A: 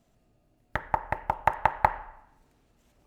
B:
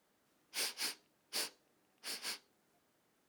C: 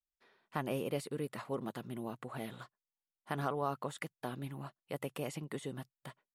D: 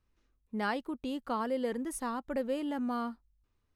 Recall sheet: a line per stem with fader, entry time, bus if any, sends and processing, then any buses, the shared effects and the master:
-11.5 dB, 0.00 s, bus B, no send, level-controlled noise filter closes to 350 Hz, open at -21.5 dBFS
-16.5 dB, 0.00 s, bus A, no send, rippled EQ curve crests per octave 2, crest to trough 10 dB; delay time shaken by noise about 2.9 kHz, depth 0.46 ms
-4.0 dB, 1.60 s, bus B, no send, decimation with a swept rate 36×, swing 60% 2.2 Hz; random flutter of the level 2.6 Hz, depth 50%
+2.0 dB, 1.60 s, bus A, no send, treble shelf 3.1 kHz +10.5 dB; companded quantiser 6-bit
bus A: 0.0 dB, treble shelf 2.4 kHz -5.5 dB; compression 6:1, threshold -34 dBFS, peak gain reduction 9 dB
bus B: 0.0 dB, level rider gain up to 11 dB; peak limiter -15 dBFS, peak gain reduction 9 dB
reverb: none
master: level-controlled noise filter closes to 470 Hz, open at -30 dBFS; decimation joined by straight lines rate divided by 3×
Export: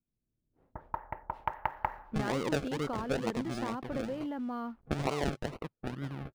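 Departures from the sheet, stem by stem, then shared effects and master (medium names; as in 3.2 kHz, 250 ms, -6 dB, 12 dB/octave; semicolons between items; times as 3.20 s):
stem A -11.5 dB -> -20.0 dB; stem D: missing treble shelf 3.1 kHz +10.5 dB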